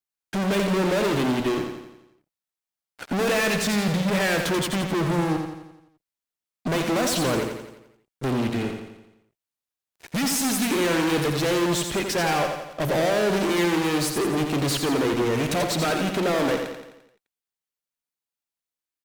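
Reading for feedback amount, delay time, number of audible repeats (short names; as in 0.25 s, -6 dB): 53%, 86 ms, 6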